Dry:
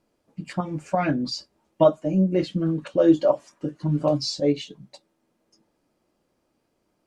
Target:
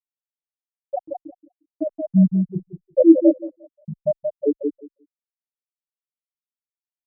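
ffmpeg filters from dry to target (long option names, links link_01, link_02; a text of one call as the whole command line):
ffmpeg -i in.wav -filter_complex "[0:a]afftfilt=real='re*gte(hypot(re,im),1)':imag='im*gte(hypot(re,im),1)':win_size=1024:overlap=0.75,asplit=2[link_01][link_02];[link_02]adelay=177,lowpass=frequency=2000:poles=1,volume=-5dB,asplit=2[link_03][link_04];[link_04]adelay=177,lowpass=frequency=2000:poles=1,volume=0.15,asplit=2[link_05][link_06];[link_06]adelay=177,lowpass=frequency=2000:poles=1,volume=0.15[link_07];[link_01][link_03][link_05][link_07]amix=inputs=4:normalize=0,asplit=2[link_08][link_09];[link_09]afreqshift=-0.65[link_10];[link_08][link_10]amix=inputs=2:normalize=1,volume=6.5dB" out.wav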